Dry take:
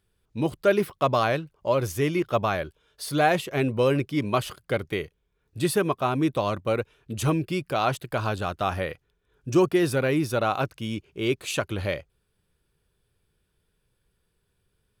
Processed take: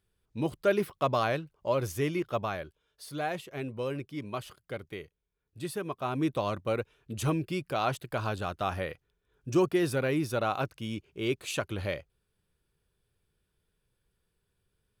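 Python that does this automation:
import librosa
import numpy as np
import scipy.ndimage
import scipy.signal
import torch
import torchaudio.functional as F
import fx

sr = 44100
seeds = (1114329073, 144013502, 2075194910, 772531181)

y = fx.gain(x, sr, db=fx.line((2.01, -5.0), (3.1, -12.0), (5.82, -12.0), (6.23, -5.0)))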